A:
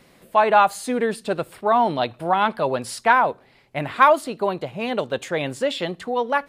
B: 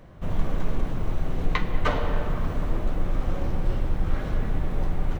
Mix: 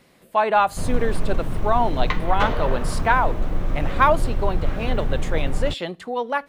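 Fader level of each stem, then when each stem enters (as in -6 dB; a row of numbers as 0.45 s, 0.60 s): -2.5 dB, +2.0 dB; 0.00 s, 0.55 s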